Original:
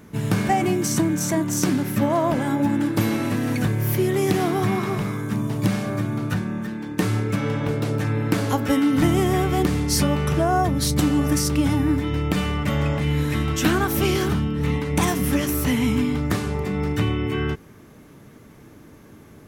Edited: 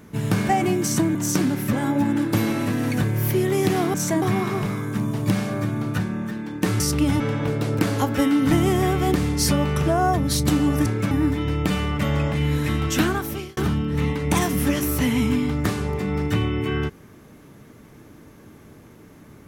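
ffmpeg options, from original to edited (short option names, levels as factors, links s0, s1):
-filter_complex "[0:a]asplit=11[s0][s1][s2][s3][s4][s5][s6][s7][s8][s9][s10];[s0]atrim=end=1.152[s11];[s1]atrim=start=1.428:end=2.012[s12];[s2]atrim=start=2.368:end=4.582[s13];[s3]atrim=start=1.148:end=1.432[s14];[s4]atrim=start=4.578:end=7.162[s15];[s5]atrim=start=11.368:end=11.772[s16];[s6]atrim=start=7.408:end=8.002[s17];[s7]atrim=start=8.298:end=11.372[s18];[s8]atrim=start=7.158:end=7.412[s19];[s9]atrim=start=11.768:end=14.23,asetpts=PTS-STARTPTS,afade=t=out:st=1.862:d=0.6[s20];[s10]atrim=start=14.23,asetpts=PTS-STARTPTS,afade=t=in:d=0.004:c=hsin[s21];[s11][s12]acrossfade=d=0.004:c1=hsin:c2=hsin[s22];[s22][s13]acrossfade=d=0.004:c1=hsin:c2=hsin[s23];[s23][s14]acrossfade=d=0.004:c1=hsin:c2=hsin[s24];[s24][s15]acrossfade=d=0.004:c1=hsin:c2=hsin[s25];[s25][s16]acrossfade=d=0.004:c1=hsin:c2=hsin[s26];[s26][s17]acrossfade=d=0.004:c1=hsin:c2=hsin[s27];[s27][s18]acrossfade=d=0.004:c1=hsin:c2=hsin[s28];[s28][s19]acrossfade=d=0.004:c1=hsin:c2=hsin[s29];[s20][s21]concat=n=2:v=0:a=1[s30];[s29][s30]acrossfade=d=0.004:c1=hsin:c2=hsin"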